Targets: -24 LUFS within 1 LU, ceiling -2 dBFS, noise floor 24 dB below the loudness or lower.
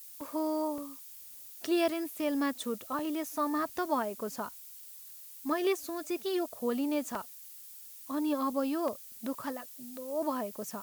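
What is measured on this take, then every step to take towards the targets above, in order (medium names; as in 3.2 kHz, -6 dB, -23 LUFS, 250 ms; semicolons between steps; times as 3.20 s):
dropouts 5; longest dropout 2.4 ms; noise floor -49 dBFS; noise floor target -58 dBFS; loudness -34.0 LUFS; peak level -17.0 dBFS; loudness target -24.0 LUFS
-> interpolate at 0.21/0.78/2.99/7.15/8.88 s, 2.4 ms; noise print and reduce 9 dB; trim +10 dB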